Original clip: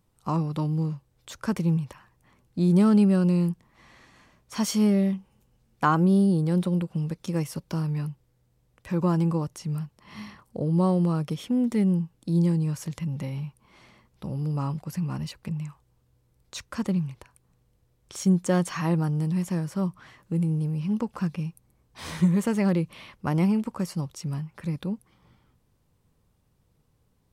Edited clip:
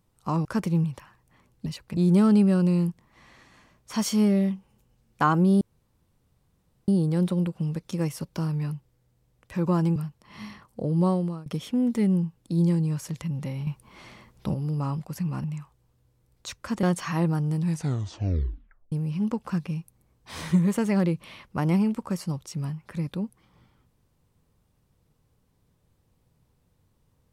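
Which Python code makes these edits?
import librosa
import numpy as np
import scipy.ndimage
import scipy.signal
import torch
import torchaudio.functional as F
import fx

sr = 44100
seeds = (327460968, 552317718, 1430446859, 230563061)

y = fx.edit(x, sr, fx.cut(start_s=0.45, length_s=0.93),
    fx.insert_room_tone(at_s=6.23, length_s=1.27),
    fx.cut(start_s=9.31, length_s=0.42),
    fx.fade_out_to(start_s=10.83, length_s=0.4, floor_db=-23.0),
    fx.clip_gain(start_s=13.44, length_s=0.87, db=7.0),
    fx.move(start_s=15.21, length_s=0.31, to_s=2.59),
    fx.cut(start_s=16.91, length_s=1.61),
    fx.tape_stop(start_s=19.3, length_s=1.31), tone=tone)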